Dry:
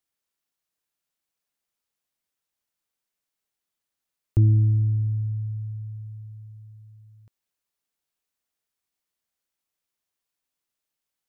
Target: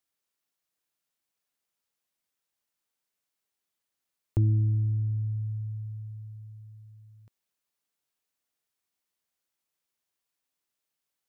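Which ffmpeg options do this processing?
ffmpeg -i in.wav -filter_complex "[0:a]lowshelf=frequency=65:gain=-7,asplit=2[link_01][link_02];[link_02]acompressor=threshold=-28dB:ratio=6,volume=0.5dB[link_03];[link_01][link_03]amix=inputs=2:normalize=0,volume=-6.5dB" out.wav

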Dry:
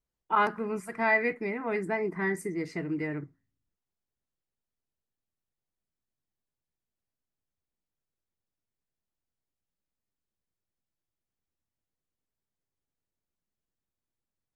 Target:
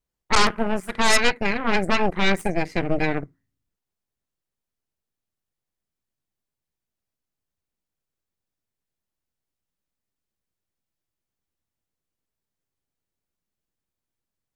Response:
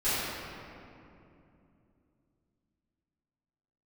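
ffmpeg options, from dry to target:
-af "aeval=exprs='0.224*(cos(1*acos(clip(val(0)/0.224,-1,1)))-cos(1*PI/2))+0.1*(cos(8*acos(clip(val(0)/0.224,-1,1)))-cos(8*PI/2))':channel_layout=same,volume=3dB"

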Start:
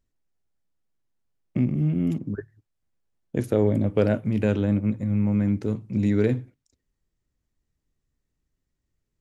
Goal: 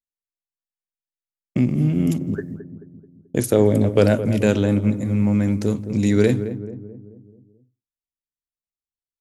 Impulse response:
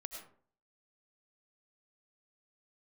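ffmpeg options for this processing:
-filter_complex "[0:a]bass=frequency=250:gain=-3,treble=frequency=4000:gain=13,agate=range=-33dB:threshold=-45dB:ratio=3:detection=peak,asplit=2[link_01][link_02];[link_02]adelay=217,lowpass=frequency=830:poles=1,volume=-10dB,asplit=2[link_03][link_04];[link_04]adelay=217,lowpass=frequency=830:poles=1,volume=0.54,asplit=2[link_05][link_06];[link_06]adelay=217,lowpass=frequency=830:poles=1,volume=0.54,asplit=2[link_07][link_08];[link_08]adelay=217,lowpass=frequency=830:poles=1,volume=0.54,asplit=2[link_09][link_10];[link_10]adelay=217,lowpass=frequency=830:poles=1,volume=0.54,asplit=2[link_11][link_12];[link_12]adelay=217,lowpass=frequency=830:poles=1,volume=0.54[link_13];[link_03][link_05][link_07][link_09][link_11][link_13]amix=inputs=6:normalize=0[link_14];[link_01][link_14]amix=inputs=2:normalize=0,volume=6dB"

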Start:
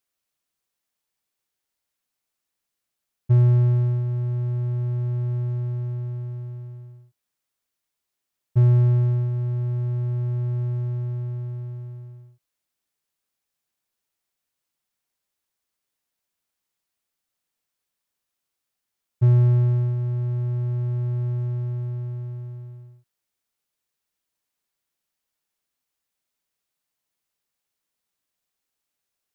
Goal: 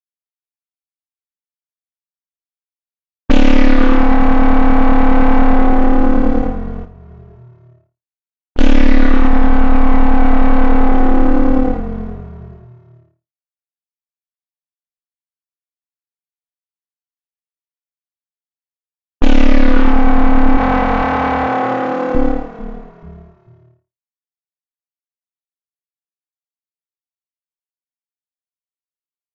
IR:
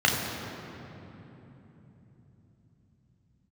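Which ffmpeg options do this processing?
-filter_complex "[0:a]aeval=exprs='val(0)*sin(2*PI*140*n/s)':channel_layout=same,asuperstop=centerf=750:order=20:qfactor=1.8,acrusher=bits=4:mix=0:aa=0.5,aecho=1:1:2.6:0.6,agate=range=-33dB:threshold=-34dB:ratio=3:detection=peak,asoftclip=type=tanh:threshold=-24.5dB,asettb=1/sr,asplit=3[link_01][link_02][link_03];[link_01]atrim=end=20.574[link_04];[link_02]atrim=start=20.57:end=22.15,asetpts=PTS-STARTPTS,afade=type=in:duration=0.004:curve=qsin,afade=type=out:start_time=1.576:duration=0.004:curve=qsin,highpass=490[link_05];[link_03]atrim=start=22.146[link_06];[link_04][link_05]acrossfade=duration=0.004:curve1=hsin:curve2=qsin[link_07];[link_07][link_06]acrossfade=duration=0.004:curve1=qsin:curve2=hsin,asplit=2[link_08][link_09];[link_09]asplit=3[link_10][link_11][link_12];[link_10]adelay=438,afreqshift=-46,volume=-14.5dB[link_13];[link_11]adelay=876,afreqshift=-92,volume=-23.9dB[link_14];[link_12]adelay=1314,afreqshift=-138,volume=-33.2dB[link_15];[link_13][link_14][link_15]amix=inputs=3:normalize=0[link_16];[link_08][link_16]amix=inputs=2:normalize=0,asettb=1/sr,asplit=3[link_17][link_18][link_19];[link_17]atrim=end=6.844[link_20];[link_18]atrim=start=6.84:end=8.59,asetpts=PTS-STARTPTS,afade=type=in:duration=0.004:curve=qsin,afade=type=out:start_time=1.746:duration=0.004:curve=qsin,acompressor=threshold=-58dB:ratio=6[link_21];[link_19]atrim=start=8.586[link_22];[link_20][link_21]acrossfade=duration=0.004:curve1=hsin:curve2=qsin[link_23];[link_23][link_22]acrossfade=duration=0.004:curve1=qsin:curve2=hsin,flanger=delay=0.5:depth=5.7:regen=79:speed=0.11:shape=sinusoidal,alimiter=level_in=31dB:limit=-1dB:release=50:level=0:latency=1,volume=-1.5dB" -ar 16000 -c:a aac -b:a 24k

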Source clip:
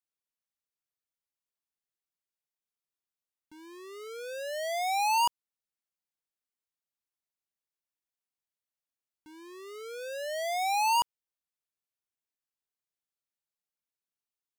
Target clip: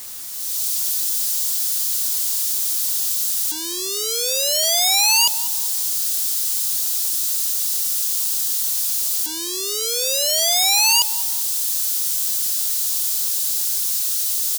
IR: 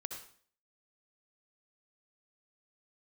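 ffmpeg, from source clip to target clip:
-filter_complex "[0:a]aeval=exprs='val(0)+0.5*0.00708*sgn(val(0))':channel_layout=same,equalizer=frequency=520:width_type=o:width=0.92:gain=4,asplit=2[link_01][link_02];[link_02]adelay=197,lowpass=frequency=1700:poles=1,volume=-20.5dB,asplit=2[link_03][link_04];[link_04]adelay=197,lowpass=frequency=1700:poles=1,volume=0.47,asplit=2[link_05][link_06];[link_06]adelay=197,lowpass=frequency=1700:poles=1,volume=0.47[link_07];[link_01][link_03][link_05][link_07]amix=inputs=4:normalize=0,acrossover=split=220[link_08][link_09];[link_09]dynaudnorm=framelen=320:gausssize=3:maxgain=15dB[link_10];[link_08][link_10]amix=inputs=2:normalize=0,aexciter=amount=14.6:drive=5.4:freq=3200,acrusher=bits=4:mix=0:aa=0.000001,asoftclip=type=tanh:threshold=-4dB,volume=-8.5dB"

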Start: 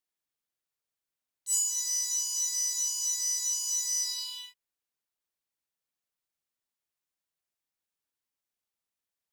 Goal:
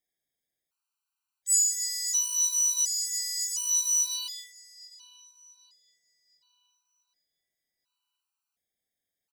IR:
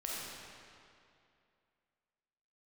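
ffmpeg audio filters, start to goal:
-filter_complex "[0:a]asplit=2[link_01][link_02];[link_02]adelay=749,lowpass=frequency=4200:poles=1,volume=-16dB,asplit=2[link_03][link_04];[link_04]adelay=749,lowpass=frequency=4200:poles=1,volume=0.51,asplit=2[link_05][link_06];[link_06]adelay=749,lowpass=frequency=4200:poles=1,volume=0.51,asplit=2[link_07][link_08];[link_08]adelay=749,lowpass=frequency=4200:poles=1,volume=0.51,asplit=2[link_09][link_10];[link_10]adelay=749,lowpass=frequency=4200:poles=1,volume=0.51[link_11];[link_01][link_03][link_05][link_07][link_09][link_11]amix=inputs=6:normalize=0,afftfilt=real='re*gt(sin(2*PI*0.7*pts/sr)*(1-2*mod(floor(b*sr/1024/780),2)),0)':imag='im*gt(sin(2*PI*0.7*pts/sr)*(1-2*mod(floor(b*sr/1024/780),2)),0)':win_size=1024:overlap=0.75,volume=5.5dB"

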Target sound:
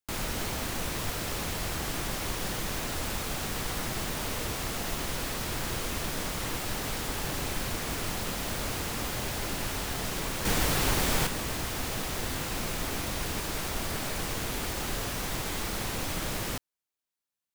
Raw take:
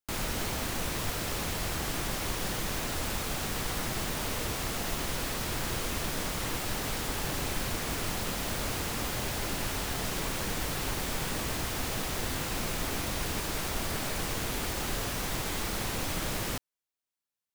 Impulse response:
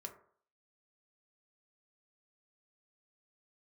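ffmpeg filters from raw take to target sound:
-filter_complex "[0:a]asettb=1/sr,asplit=3[link_01][link_02][link_03];[link_01]atrim=end=10.454[link_04];[link_02]atrim=start=10.45:end=11.27,asetpts=PTS-STARTPTS,afade=type=in:duration=0.004:curve=qsin,afade=type=out:start_time=0.816:duration=0.004:curve=qsin,acontrast=61[link_05];[link_03]atrim=start=11.266[link_06];[link_04][link_05]acrossfade=duration=0.004:curve1=hsin:curve2=qsin[link_07];[link_07][link_06]acrossfade=duration=0.004:curve1=qsin:curve2=hsin"

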